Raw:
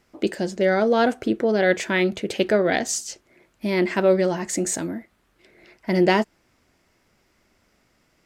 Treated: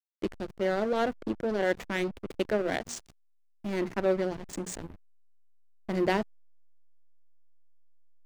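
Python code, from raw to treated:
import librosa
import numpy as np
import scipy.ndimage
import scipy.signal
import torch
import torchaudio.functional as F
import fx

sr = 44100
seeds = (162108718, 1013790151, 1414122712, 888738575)

y = fx.hum_notches(x, sr, base_hz=60, count=4)
y = fx.backlash(y, sr, play_db=-19.0)
y = y * 10.0 ** (-7.5 / 20.0)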